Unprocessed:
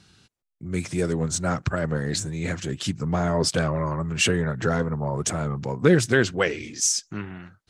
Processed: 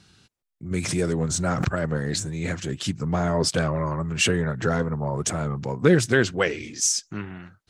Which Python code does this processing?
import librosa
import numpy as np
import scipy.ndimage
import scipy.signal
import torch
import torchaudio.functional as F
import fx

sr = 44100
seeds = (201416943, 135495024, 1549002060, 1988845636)

y = fx.pre_swell(x, sr, db_per_s=48.0, at=(0.71, 1.71))